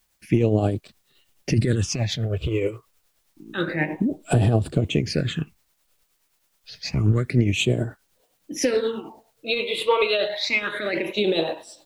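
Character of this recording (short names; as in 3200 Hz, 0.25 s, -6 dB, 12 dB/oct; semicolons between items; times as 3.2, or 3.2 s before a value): phasing stages 8, 0.28 Hz, lowest notch 220–2100 Hz; a quantiser's noise floor 12-bit, dither triangular; tremolo triangle 9.5 Hz, depth 55%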